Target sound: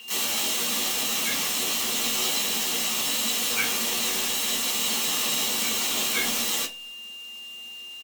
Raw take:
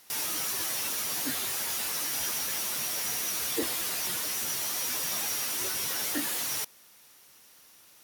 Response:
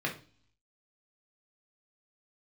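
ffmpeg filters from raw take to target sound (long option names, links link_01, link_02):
-filter_complex "[0:a]asplit=3[link_01][link_02][link_03];[link_02]asetrate=37084,aresample=44100,atempo=1.18921,volume=-2dB[link_04];[link_03]asetrate=55563,aresample=44100,atempo=0.793701,volume=-5dB[link_05];[link_01][link_04][link_05]amix=inputs=3:normalize=0,aeval=exprs='val(0)*sin(2*PI*1900*n/s)':channel_layout=same,aeval=exprs='val(0)+0.00708*sin(2*PI*2800*n/s)':channel_layout=same,acrossover=split=390|1700[link_06][link_07][link_08];[link_08]crystalizer=i=1:c=0[link_09];[link_06][link_07][link_09]amix=inputs=3:normalize=0[link_10];[1:a]atrim=start_sample=2205,asetrate=70560,aresample=44100[link_11];[link_10][link_11]afir=irnorm=-1:irlink=0,volume=4dB"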